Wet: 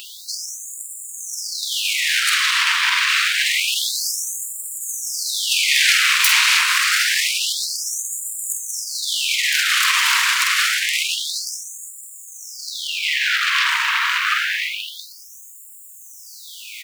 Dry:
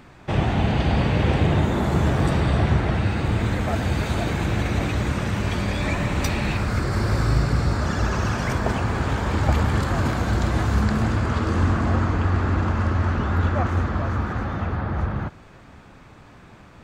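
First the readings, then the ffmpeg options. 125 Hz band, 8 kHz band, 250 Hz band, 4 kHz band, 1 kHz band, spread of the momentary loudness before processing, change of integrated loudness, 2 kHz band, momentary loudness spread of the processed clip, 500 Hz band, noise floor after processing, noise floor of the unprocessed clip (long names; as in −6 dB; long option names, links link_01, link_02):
below −40 dB, +20.5 dB, below −40 dB, +18.5 dB, 0.0 dB, 4 LU, +5.5 dB, +12.0 dB, 17 LU, below −40 dB, −41 dBFS, −47 dBFS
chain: -filter_complex "[0:a]equalizer=frequency=410:width=1.5:gain=-6.5,asplit=2[link_01][link_02];[link_02]aeval=exprs='0.398*sin(PI/2*8.91*val(0)/0.398)':channel_layout=same,volume=-5.5dB[link_03];[link_01][link_03]amix=inputs=2:normalize=0,acrusher=bits=7:mix=0:aa=0.000001,asplit=2[link_04][link_05];[link_05]adelay=47,volume=-7dB[link_06];[link_04][link_06]amix=inputs=2:normalize=0,alimiter=limit=-11dB:level=0:latency=1,aeval=exprs='sgn(val(0))*max(abs(val(0))-0.00708,0)':channel_layout=same,equalizer=frequency=2200:width=0.65:gain=9.5,crystalizer=i=4:c=0,afftfilt=real='re*gte(b*sr/1024,870*pow(7000/870,0.5+0.5*sin(2*PI*0.27*pts/sr)))':imag='im*gte(b*sr/1024,870*pow(7000/870,0.5+0.5*sin(2*PI*0.27*pts/sr)))':win_size=1024:overlap=0.75,volume=-7dB"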